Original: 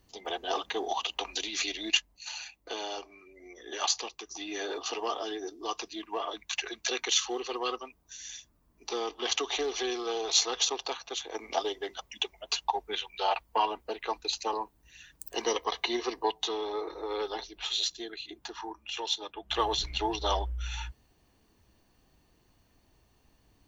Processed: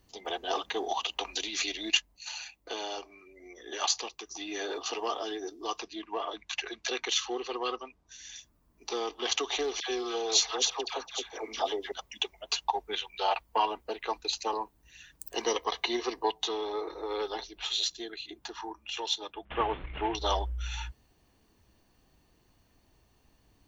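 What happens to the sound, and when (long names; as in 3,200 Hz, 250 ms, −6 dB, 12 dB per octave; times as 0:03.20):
0:05.79–0:08.36: high-frequency loss of the air 74 metres
0:09.80–0:11.92: all-pass dispersion lows, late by 88 ms, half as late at 1,100 Hz
0:19.45–0:20.15: variable-slope delta modulation 16 kbit/s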